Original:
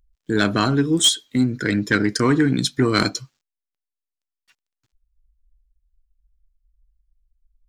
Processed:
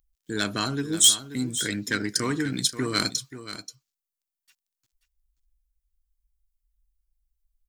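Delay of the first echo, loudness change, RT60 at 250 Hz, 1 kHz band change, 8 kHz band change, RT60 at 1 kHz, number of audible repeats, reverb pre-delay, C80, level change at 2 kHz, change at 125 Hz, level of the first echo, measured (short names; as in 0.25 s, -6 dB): 0.532 s, -4.5 dB, none, -8.5 dB, +3.0 dB, none, 1, none, none, -7.0 dB, -10.5 dB, -12.5 dB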